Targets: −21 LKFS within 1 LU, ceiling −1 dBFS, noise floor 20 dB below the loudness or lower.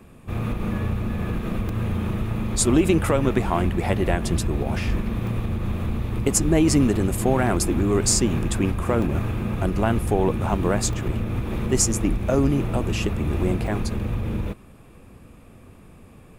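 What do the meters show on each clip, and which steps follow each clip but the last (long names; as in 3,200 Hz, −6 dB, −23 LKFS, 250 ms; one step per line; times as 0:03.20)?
number of dropouts 5; longest dropout 2.2 ms; integrated loudness −23.0 LKFS; sample peak −5.5 dBFS; target loudness −21.0 LKFS
→ repair the gap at 0:01.69/0:05.27/0:09.02/0:10.93/0:13.67, 2.2 ms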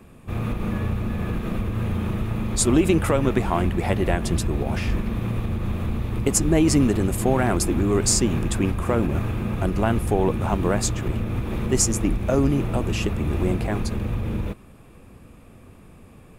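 number of dropouts 0; integrated loudness −23.0 LKFS; sample peak −5.5 dBFS; target loudness −21.0 LKFS
→ level +2 dB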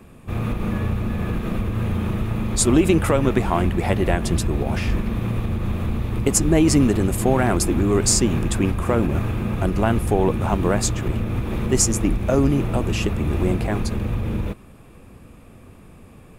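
integrated loudness −21.0 LKFS; sample peak −3.5 dBFS; background noise floor −45 dBFS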